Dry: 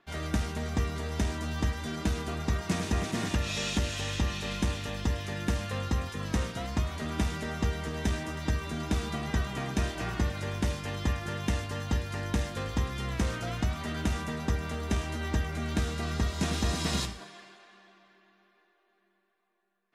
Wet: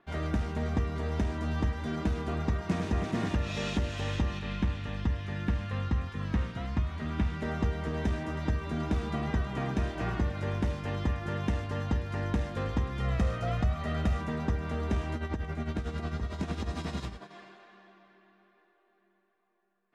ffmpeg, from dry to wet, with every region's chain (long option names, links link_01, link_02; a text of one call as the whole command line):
ffmpeg -i in.wav -filter_complex "[0:a]asettb=1/sr,asplit=3[link_01][link_02][link_03];[link_01]atrim=end=4.394[link_04];[link_02]atrim=start=4.39:end=7.42,asetpts=PTS-STARTPTS,afade=type=in:duration=0.004:curve=qsin,afade=type=out:start_time=3.026:duration=0.004:curve=qsin,acrossover=split=4200[link_05][link_06];[link_06]acompressor=threshold=-53dB:ratio=4:attack=1:release=60[link_07];[link_05][link_07]amix=inputs=2:normalize=0,equalizer=frequency=520:width=0.72:gain=-7.5[link_08];[link_03]atrim=start=7.416[link_09];[link_04][link_08]acrossfade=duration=0.004:curve1=hsin:curve2=qsin[link_10];[link_10][link_09]acrossfade=duration=0.004:curve1=qsin:curve2=hsin,asettb=1/sr,asplit=3[link_11][link_12][link_13];[link_11]atrim=end=13.004[link_14];[link_12]atrim=start=13:end=14.21,asetpts=PTS-STARTPTS,afade=type=in:duration=0.004:curve=qsin,afade=type=out:start_time=1.206:duration=0.004:curve=qsin,aecho=1:1:1.6:0.5,atrim=end_sample=53361,asoftclip=type=hard:threshold=-18dB[link_15];[link_13]atrim=start=14.206[link_16];[link_14][link_15]acrossfade=duration=0.004:curve1=hsin:curve2=qsin[link_17];[link_17][link_16]acrossfade=duration=0.004:curve1=qsin:curve2=hsin,asettb=1/sr,asplit=3[link_18][link_19][link_20];[link_18]atrim=end=15.154[link_21];[link_19]atrim=start=15.15:end=17.31,asetpts=PTS-STARTPTS,afade=type=in:duration=0.004:curve=qsin,afade=type=out:start_time=2.156:duration=0.004:curve=qsin,acompressor=threshold=-29dB:ratio=6:attack=3.2:release=140:knee=1:detection=peak,tremolo=f=11:d=0.64[link_22];[link_20]atrim=start=17.306[link_23];[link_21][link_22]acrossfade=duration=0.004:curve1=hsin:curve2=qsin[link_24];[link_24][link_23]acrossfade=duration=0.004:curve1=qsin:curve2=hsin,lowpass=frequency=1500:poles=1,alimiter=limit=-22dB:level=0:latency=1:release=290,volume=3dB" out.wav